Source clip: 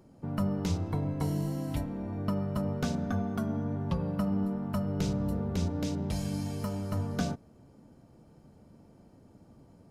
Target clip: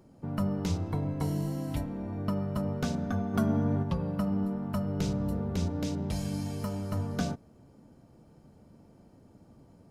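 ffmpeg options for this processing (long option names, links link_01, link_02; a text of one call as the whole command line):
ffmpeg -i in.wav -filter_complex "[0:a]asplit=3[link_01][link_02][link_03];[link_01]afade=type=out:start_time=3.33:duration=0.02[link_04];[link_02]acontrast=31,afade=type=in:start_time=3.33:duration=0.02,afade=type=out:start_time=3.82:duration=0.02[link_05];[link_03]afade=type=in:start_time=3.82:duration=0.02[link_06];[link_04][link_05][link_06]amix=inputs=3:normalize=0" out.wav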